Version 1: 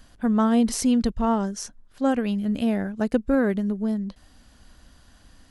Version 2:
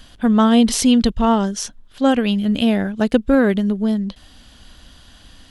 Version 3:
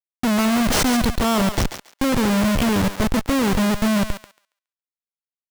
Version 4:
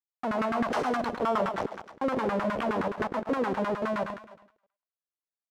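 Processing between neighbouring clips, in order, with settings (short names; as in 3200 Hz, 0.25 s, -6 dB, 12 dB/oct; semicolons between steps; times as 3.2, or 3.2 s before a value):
bell 3300 Hz +10 dB 0.71 oct; gain +6.5 dB
Schmitt trigger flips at -20 dBFS; thinning echo 0.139 s, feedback 18%, high-pass 720 Hz, level -7.5 dB
reverse delay 0.101 s, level -8 dB; echo 0.322 s -22.5 dB; LFO band-pass saw down 9.6 Hz 340–1500 Hz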